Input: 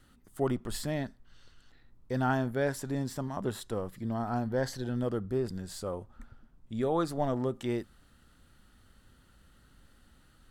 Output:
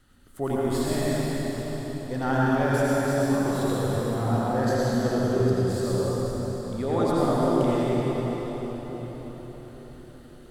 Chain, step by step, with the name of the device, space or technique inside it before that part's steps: cathedral (reverb RT60 5.2 s, pre-delay 73 ms, DRR -7.5 dB)

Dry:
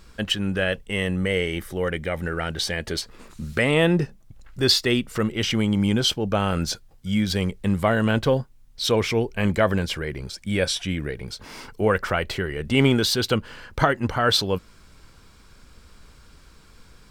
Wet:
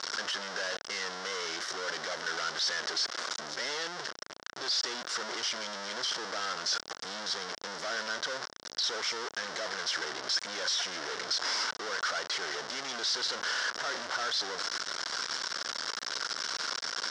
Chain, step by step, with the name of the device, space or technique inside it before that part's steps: home computer beeper (infinite clipping; speaker cabinet 670–5900 Hz, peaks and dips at 820 Hz -4 dB, 1500 Hz +4 dB, 2500 Hz -10 dB, 5400 Hz +9 dB); gain -6 dB

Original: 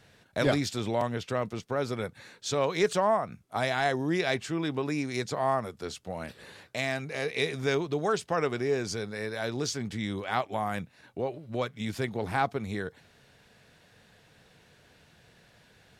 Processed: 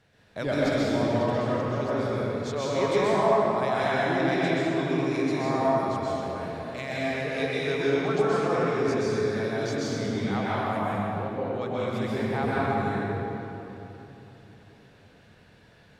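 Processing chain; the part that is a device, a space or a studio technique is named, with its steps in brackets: swimming-pool hall (reverb RT60 3.3 s, pre-delay 0.12 s, DRR -8 dB; high shelf 4600 Hz -7.5 dB); gain -5 dB

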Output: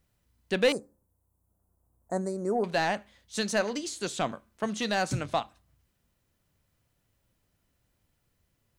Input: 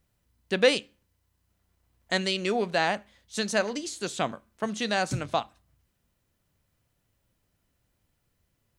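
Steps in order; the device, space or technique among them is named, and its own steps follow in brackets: 0.72–2.64 Chebyshev band-stop 860–9300 Hz, order 2; saturation between pre-emphasis and de-emphasis (high shelf 2300 Hz +12 dB; soft clip -13.5 dBFS, distortion -13 dB; high shelf 2300 Hz -12 dB)

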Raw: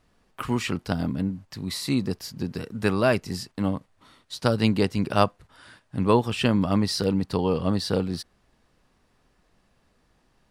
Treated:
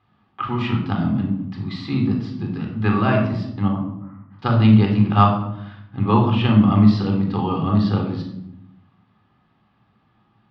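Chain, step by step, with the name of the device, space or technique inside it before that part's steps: 3.68–4.39 inverse Chebyshev low-pass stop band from 3500 Hz, stop band 40 dB; guitar cabinet (speaker cabinet 95–3700 Hz, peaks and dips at 110 Hz +8 dB, 230 Hz +8 dB, 470 Hz -9 dB, 810 Hz +5 dB, 1200 Hz +7 dB, 3300 Hz +4 dB); shoebox room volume 1900 m³, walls furnished, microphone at 3.9 m; gain -3 dB

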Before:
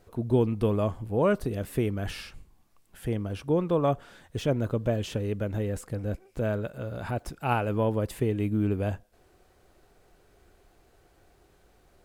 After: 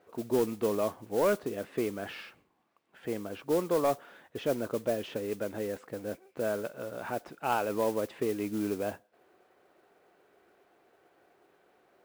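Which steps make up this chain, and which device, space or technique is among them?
carbon microphone (BPF 300–2700 Hz; soft clip -17 dBFS, distortion -20 dB; modulation noise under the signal 18 dB)

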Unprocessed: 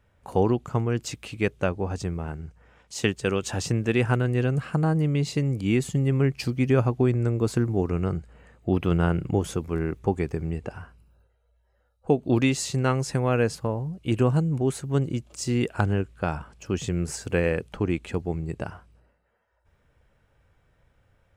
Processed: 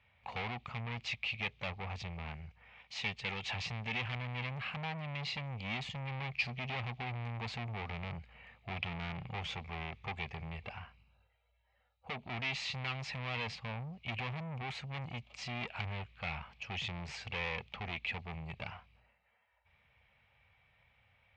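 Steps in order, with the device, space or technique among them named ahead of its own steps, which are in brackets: scooped metal amplifier (tube stage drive 32 dB, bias 0.4; speaker cabinet 100–3600 Hz, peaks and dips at 230 Hz +9 dB, 780 Hz +5 dB, 1500 Hz -9 dB, 2300 Hz +8 dB; passive tone stack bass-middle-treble 10-0-10); gain +8 dB

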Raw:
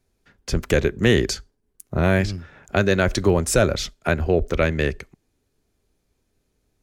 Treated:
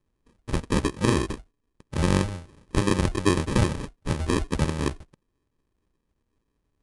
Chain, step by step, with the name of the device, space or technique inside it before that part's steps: crushed at another speed (playback speed 2×; sample-and-hold 31×; playback speed 0.5×); gain -4.5 dB

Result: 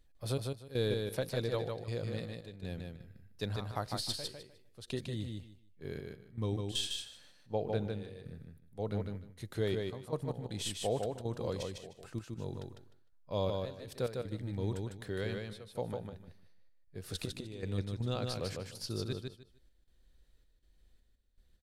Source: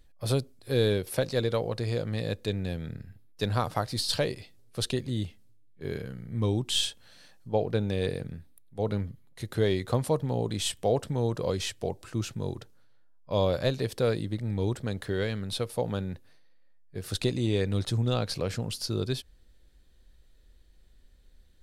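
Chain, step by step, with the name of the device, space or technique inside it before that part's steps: trance gate with a delay (step gate "xx..x.xxx." 80 bpm -12 dB; feedback echo 0.152 s, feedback 20%, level -4 dB); gain -8 dB

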